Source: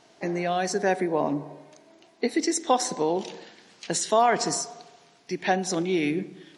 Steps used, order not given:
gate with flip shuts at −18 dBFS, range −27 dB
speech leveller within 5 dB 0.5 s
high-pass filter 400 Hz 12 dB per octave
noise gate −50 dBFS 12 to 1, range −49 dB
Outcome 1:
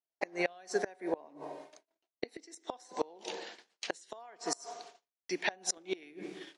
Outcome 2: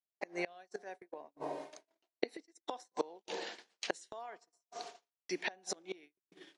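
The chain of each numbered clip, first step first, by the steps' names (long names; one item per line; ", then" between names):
high-pass filter, then noise gate, then speech leveller, then gate with flip
gate with flip, then high-pass filter, then noise gate, then speech leveller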